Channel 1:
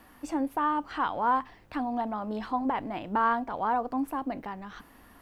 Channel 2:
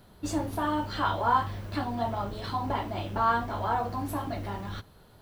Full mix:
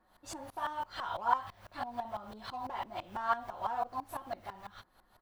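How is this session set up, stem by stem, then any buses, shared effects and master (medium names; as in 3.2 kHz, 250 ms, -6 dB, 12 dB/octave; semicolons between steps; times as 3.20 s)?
-13.0 dB, 0.00 s, no send, local Wiener filter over 15 samples; peaking EQ 150 Hz -7 dB 2.7 oct; comb 5.5 ms, depth 57%
-1.5 dB, 2.8 ms, polarity flipped, no send, resonant low shelf 500 Hz -12.5 dB, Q 1.5; sawtooth tremolo in dB swelling 6 Hz, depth 26 dB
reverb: none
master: none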